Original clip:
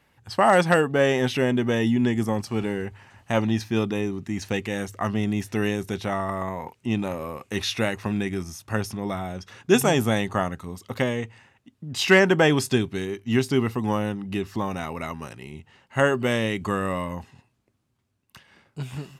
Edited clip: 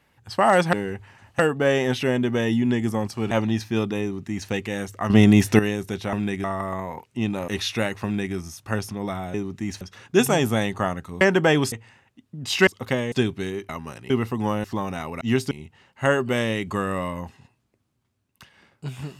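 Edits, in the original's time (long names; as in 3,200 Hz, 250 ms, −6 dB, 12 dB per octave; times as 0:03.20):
0:02.65–0:03.31: move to 0:00.73
0:04.02–0:04.49: duplicate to 0:09.36
0:05.10–0:05.59: clip gain +11 dB
0:07.17–0:07.50: remove
0:08.06–0:08.37: duplicate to 0:06.13
0:10.76–0:11.21: swap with 0:12.16–0:12.67
0:13.24–0:13.54: swap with 0:15.04–0:15.45
0:14.08–0:14.47: remove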